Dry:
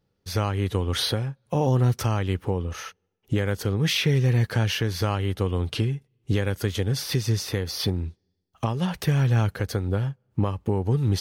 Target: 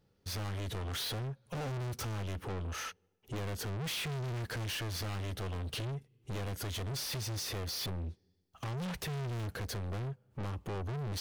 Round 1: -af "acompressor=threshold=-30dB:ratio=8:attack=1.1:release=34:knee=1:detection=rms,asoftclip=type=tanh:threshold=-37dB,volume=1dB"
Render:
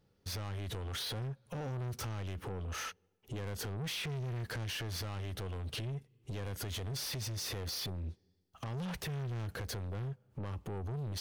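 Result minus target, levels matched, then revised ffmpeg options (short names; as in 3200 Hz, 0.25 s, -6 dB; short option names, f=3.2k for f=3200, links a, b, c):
compressor: peak gain reduction +14.5 dB
-af "asoftclip=type=tanh:threshold=-37dB,volume=1dB"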